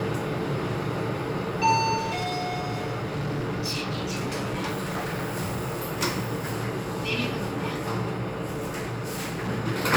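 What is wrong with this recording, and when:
1.97–5.84 clipped -25.5 dBFS
8.46–9.5 clipped -27 dBFS

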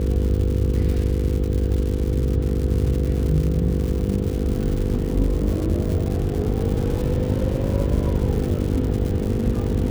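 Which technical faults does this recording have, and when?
buzz 50 Hz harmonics 10 -26 dBFS
crackle 210/s -27 dBFS

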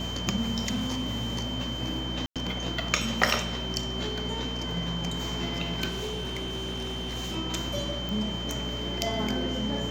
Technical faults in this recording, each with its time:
hum 60 Hz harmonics 4 -36 dBFS
tone 3100 Hz -35 dBFS
0.68–1.43 clipped -24.5 dBFS
2.26–2.36 gap 97 ms
5.88–7.37 clipped -29 dBFS
8.09 pop

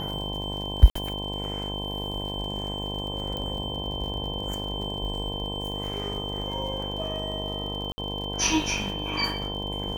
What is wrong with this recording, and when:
buzz 50 Hz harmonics 21 -34 dBFS
crackle 67/s -36 dBFS
tone 3100 Hz -33 dBFS
0.9–0.95 gap 54 ms
3.37 pop -20 dBFS
7.92–7.98 gap 60 ms

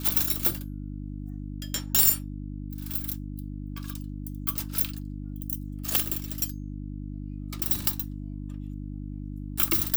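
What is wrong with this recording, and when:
hum 50 Hz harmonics 6 -36 dBFS
2.93 gap 4.9 ms

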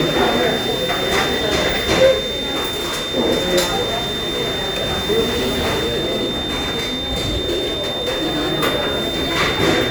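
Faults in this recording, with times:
tone 3600 Hz -23 dBFS
2.7–3.12 clipped -19 dBFS
5.27–8.52 clipped -15.5 dBFS

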